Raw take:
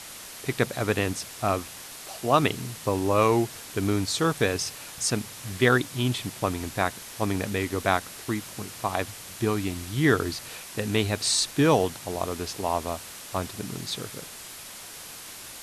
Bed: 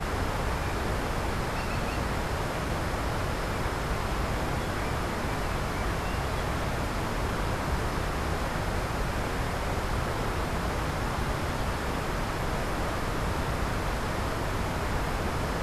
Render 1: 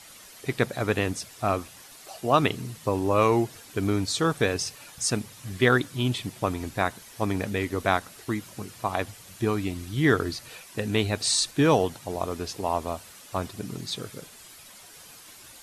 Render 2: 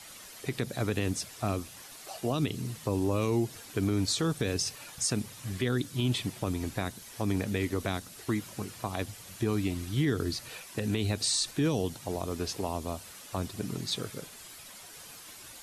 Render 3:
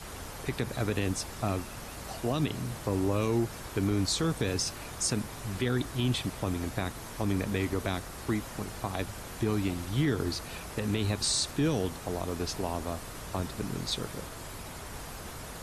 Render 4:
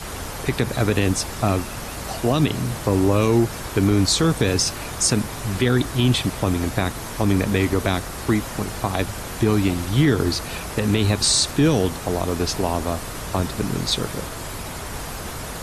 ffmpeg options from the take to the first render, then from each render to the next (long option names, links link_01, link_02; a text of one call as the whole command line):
ffmpeg -i in.wav -af "afftdn=noise_reduction=9:noise_floor=-42" out.wav
ffmpeg -i in.wav -filter_complex "[0:a]acrossover=split=380|3000[link_01][link_02][link_03];[link_02]acompressor=threshold=-34dB:ratio=6[link_04];[link_01][link_04][link_03]amix=inputs=3:normalize=0,alimiter=limit=-19dB:level=0:latency=1:release=53" out.wav
ffmpeg -i in.wav -i bed.wav -filter_complex "[1:a]volume=-13.5dB[link_01];[0:a][link_01]amix=inputs=2:normalize=0" out.wav
ffmpeg -i in.wav -af "volume=10.5dB" out.wav